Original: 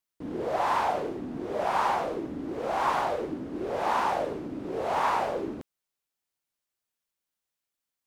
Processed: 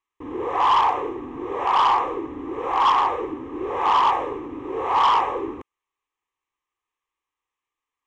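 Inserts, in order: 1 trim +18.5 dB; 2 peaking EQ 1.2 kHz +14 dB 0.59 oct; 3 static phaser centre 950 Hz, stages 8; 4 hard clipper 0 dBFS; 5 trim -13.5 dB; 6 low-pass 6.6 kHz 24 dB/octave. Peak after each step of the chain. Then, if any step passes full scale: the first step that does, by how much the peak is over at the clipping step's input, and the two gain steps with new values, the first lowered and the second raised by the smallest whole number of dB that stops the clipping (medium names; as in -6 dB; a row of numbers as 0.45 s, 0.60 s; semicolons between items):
+4.5 dBFS, +12.5 dBFS, +9.5 dBFS, 0.0 dBFS, -13.5 dBFS, -12.5 dBFS; step 1, 9.5 dB; step 1 +8.5 dB, step 5 -3.5 dB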